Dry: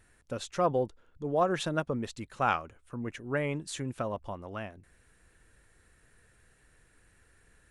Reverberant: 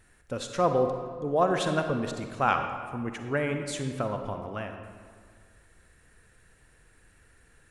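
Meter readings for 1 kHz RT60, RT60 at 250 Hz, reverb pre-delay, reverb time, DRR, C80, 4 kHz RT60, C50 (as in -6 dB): 1.9 s, 1.9 s, 39 ms, 1.9 s, 5.5 dB, 7.5 dB, 1.1 s, 6.0 dB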